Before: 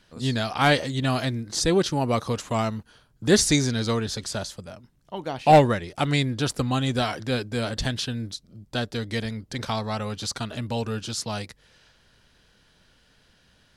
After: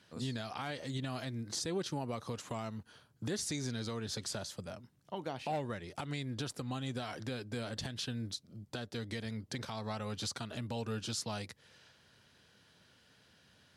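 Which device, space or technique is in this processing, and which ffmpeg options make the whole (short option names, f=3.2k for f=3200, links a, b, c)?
podcast mastering chain: -af "highpass=f=79:w=0.5412,highpass=f=79:w=1.3066,acompressor=threshold=-33dB:ratio=2,alimiter=limit=-23dB:level=0:latency=1:release=176,volume=-3.5dB" -ar 48000 -c:a libmp3lame -b:a 96k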